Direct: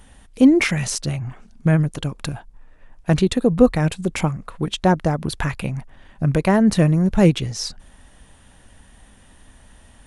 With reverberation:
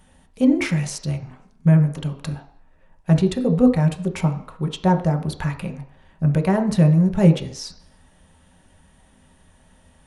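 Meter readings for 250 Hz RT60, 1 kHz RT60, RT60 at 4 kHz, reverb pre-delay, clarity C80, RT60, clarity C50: 0.50 s, 0.55 s, 0.60 s, 3 ms, 14.0 dB, 0.55 s, 11.0 dB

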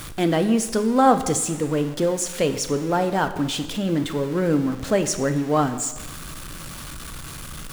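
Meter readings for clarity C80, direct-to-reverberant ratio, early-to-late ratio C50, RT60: 13.5 dB, 9.0 dB, 11.5 dB, 1.1 s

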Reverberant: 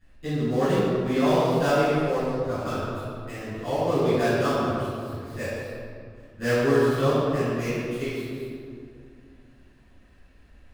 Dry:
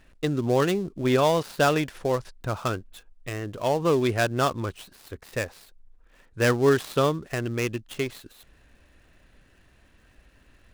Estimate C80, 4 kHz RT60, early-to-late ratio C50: -2.0 dB, 1.3 s, -5.0 dB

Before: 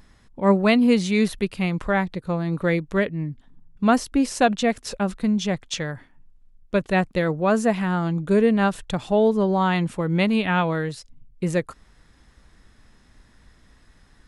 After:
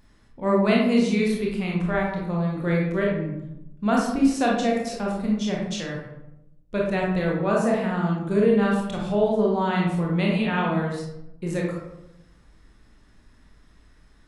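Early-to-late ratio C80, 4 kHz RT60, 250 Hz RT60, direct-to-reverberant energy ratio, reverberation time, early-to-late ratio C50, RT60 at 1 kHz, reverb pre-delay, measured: 5.0 dB, 0.50 s, 1.1 s, -3.0 dB, 0.85 s, 1.5 dB, 0.80 s, 22 ms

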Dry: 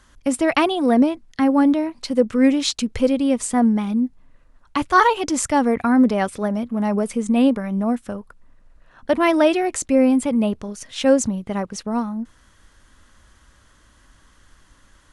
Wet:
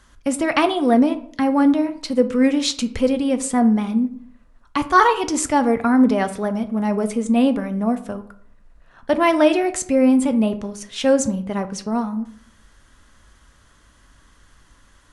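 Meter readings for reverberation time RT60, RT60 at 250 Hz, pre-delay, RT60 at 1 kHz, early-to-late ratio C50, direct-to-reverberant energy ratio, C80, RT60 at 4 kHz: 0.60 s, 0.65 s, 3 ms, 0.55 s, 14.5 dB, 8.5 dB, 18.0 dB, 0.35 s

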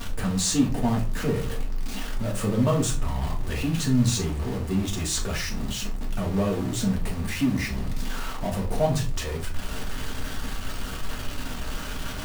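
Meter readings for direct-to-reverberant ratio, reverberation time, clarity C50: -2.5 dB, not exponential, 10.0 dB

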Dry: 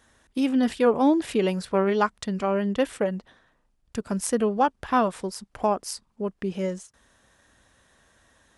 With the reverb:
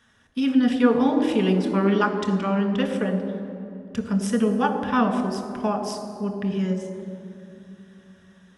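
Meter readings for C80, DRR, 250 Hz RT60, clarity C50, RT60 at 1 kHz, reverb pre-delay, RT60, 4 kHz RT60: 8.5 dB, 4.0 dB, 3.9 s, 7.5 dB, 2.5 s, 3 ms, 2.7 s, 1.7 s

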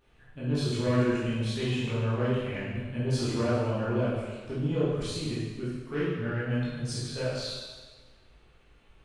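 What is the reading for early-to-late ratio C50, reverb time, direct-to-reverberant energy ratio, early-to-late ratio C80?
-1.5 dB, 1.4 s, -10.5 dB, 1.0 dB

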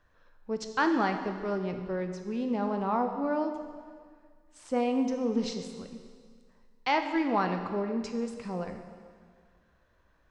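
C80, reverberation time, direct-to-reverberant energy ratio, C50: 8.5 dB, 1.9 s, 5.5 dB, 7.5 dB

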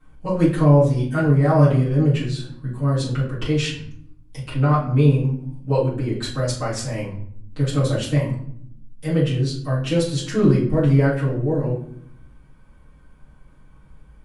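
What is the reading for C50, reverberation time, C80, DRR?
5.5 dB, 0.65 s, 10.5 dB, -10.5 dB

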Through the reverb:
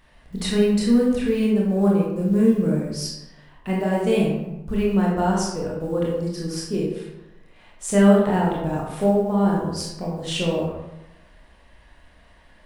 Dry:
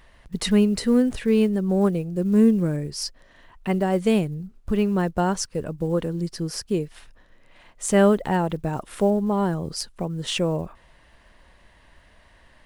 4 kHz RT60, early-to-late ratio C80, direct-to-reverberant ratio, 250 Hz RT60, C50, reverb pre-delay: 0.55 s, 4.5 dB, -4.0 dB, 1.0 s, 1.0 dB, 21 ms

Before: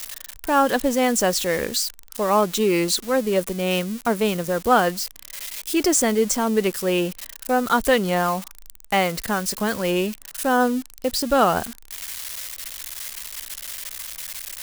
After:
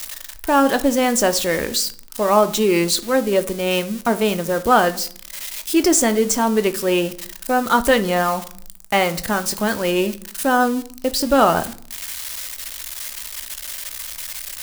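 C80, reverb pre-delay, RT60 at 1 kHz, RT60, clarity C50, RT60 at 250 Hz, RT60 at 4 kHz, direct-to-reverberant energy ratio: 22.0 dB, 3 ms, 0.50 s, 0.55 s, 16.0 dB, 0.80 s, 0.40 s, 9.5 dB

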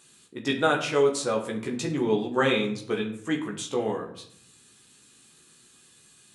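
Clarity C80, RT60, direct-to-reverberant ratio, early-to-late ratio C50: 12.5 dB, 0.70 s, -0.5 dB, 9.5 dB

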